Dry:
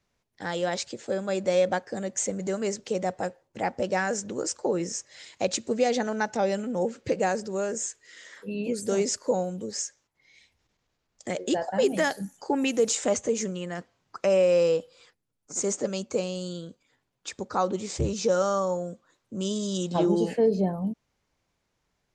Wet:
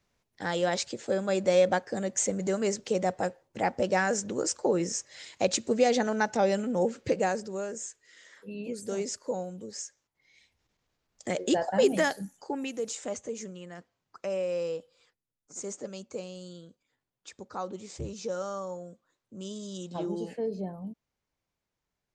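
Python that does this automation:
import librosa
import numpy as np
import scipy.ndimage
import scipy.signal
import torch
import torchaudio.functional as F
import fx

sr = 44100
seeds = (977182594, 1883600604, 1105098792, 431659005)

y = fx.gain(x, sr, db=fx.line((7.0, 0.5), (7.77, -7.0), (9.84, -7.0), (11.41, 0.5), (11.92, 0.5), (12.73, -10.0)))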